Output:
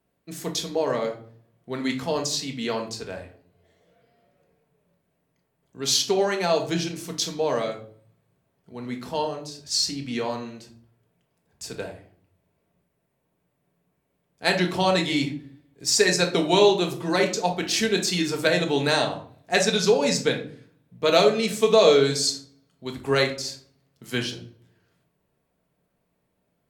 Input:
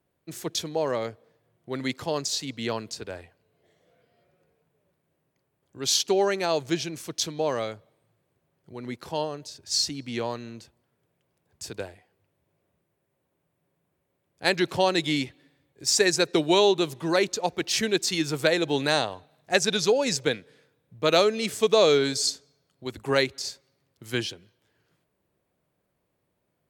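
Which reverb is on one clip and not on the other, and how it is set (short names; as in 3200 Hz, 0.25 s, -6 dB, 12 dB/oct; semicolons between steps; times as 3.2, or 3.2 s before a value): shoebox room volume 490 m³, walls furnished, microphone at 1.6 m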